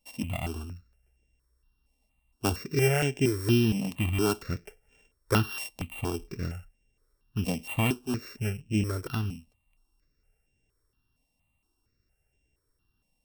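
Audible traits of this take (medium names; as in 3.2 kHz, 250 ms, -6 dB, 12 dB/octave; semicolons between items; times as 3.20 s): a buzz of ramps at a fixed pitch in blocks of 16 samples; notches that jump at a steady rate 4.3 Hz 380–4300 Hz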